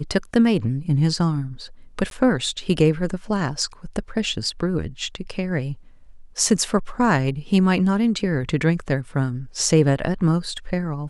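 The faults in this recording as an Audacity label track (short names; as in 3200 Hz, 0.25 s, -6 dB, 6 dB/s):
2.100000	2.110000	gap 12 ms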